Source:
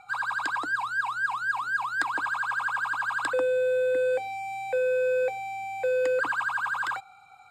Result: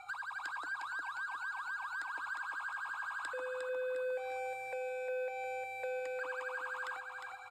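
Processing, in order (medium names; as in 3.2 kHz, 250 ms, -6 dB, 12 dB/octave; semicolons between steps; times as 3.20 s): peaking EQ 200 Hz -13.5 dB 1.6 oct; compression 6:1, threshold -42 dBFS, peak gain reduction 18 dB; on a send: feedback delay 356 ms, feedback 43%, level -5 dB; on the sum: trim +1 dB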